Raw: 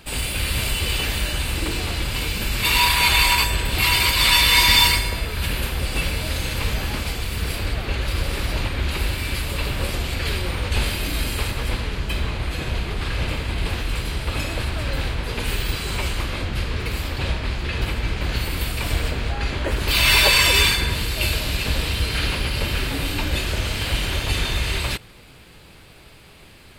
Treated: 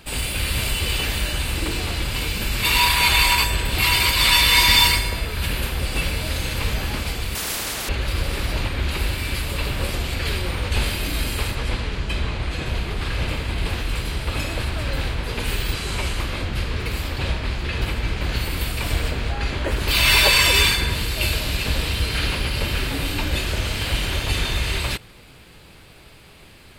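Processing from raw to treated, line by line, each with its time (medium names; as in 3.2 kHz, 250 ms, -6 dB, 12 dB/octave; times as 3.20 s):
7.35–7.89 s: spectrum-flattening compressor 4:1
11.55–12.66 s: low-pass 8.9 kHz
15.74–16.20 s: CVSD coder 64 kbps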